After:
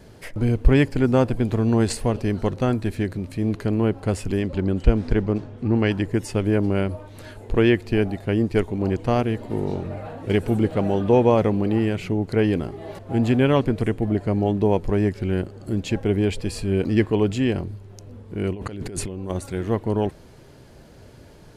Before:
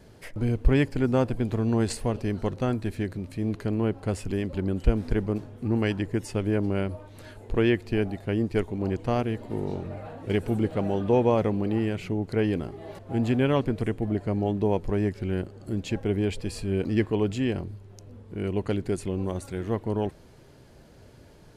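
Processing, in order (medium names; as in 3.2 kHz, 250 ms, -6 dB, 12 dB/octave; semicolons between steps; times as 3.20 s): 4.39–5.90 s: low-pass 9.1 kHz -> 4.9 kHz 12 dB/octave; 18.53–19.30 s: compressor with a negative ratio -36 dBFS, ratio -1; trim +5 dB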